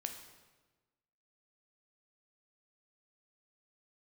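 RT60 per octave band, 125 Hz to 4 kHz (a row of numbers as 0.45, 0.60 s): 1.5, 1.4, 1.3, 1.2, 1.1, 1.0 s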